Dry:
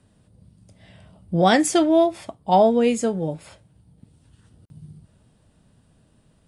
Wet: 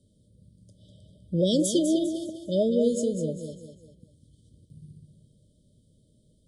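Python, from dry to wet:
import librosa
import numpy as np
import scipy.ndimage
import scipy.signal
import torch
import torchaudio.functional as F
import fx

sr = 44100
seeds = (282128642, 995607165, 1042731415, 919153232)

p1 = fx.brickwall_bandstop(x, sr, low_hz=640.0, high_hz=3000.0)
p2 = p1 + fx.echo_feedback(p1, sr, ms=200, feedback_pct=38, wet_db=-8, dry=0)
y = F.gain(torch.from_numpy(p2), -4.5).numpy()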